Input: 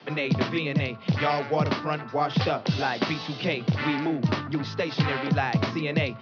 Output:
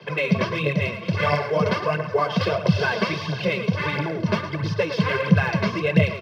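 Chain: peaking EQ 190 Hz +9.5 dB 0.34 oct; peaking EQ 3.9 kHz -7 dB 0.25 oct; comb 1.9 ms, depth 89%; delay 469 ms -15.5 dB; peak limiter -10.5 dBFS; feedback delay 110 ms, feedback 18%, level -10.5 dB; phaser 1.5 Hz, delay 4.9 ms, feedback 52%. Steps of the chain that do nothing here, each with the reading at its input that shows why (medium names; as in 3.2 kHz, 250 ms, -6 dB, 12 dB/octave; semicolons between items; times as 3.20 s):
none, every step acts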